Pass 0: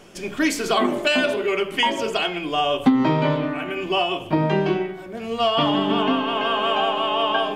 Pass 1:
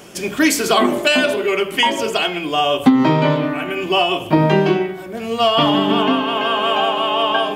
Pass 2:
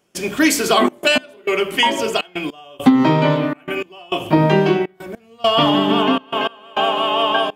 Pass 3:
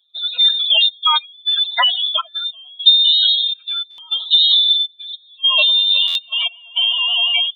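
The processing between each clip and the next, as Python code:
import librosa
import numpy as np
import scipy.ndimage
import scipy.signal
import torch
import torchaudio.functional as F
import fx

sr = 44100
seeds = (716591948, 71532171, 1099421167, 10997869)

y1 = scipy.signal.sosfilt(scipy.signal.butter(2, 60.0, 'highpass', fs=sr, output='sos'), x)
y1 = fx.high_shelf(y1, sr, hz=9800.0, db=11.5)
y1 = fx.rider(y1, sr, range_db=5, speed_s=2.0)
y1 = y1 * 10.0 ** (4.0 / 20.0)
y2 = fx.step_gate(y1, sr, bpm=102, pattern='.xxxxx.x.', floor_db=-24.0, edge_ms=4.5)
y3 = fx.spec_expand(y2, sr, power=3.2)
y3 = fx.freq_invert(y3, sr, carrier_hz=3900)
y3 = fx.buffer_glitch(y3, sr, at_s=(3.9, 6.07), block=512, repeats=6)
y3 = y3 * 10.0 ** (1.5 / 20.0)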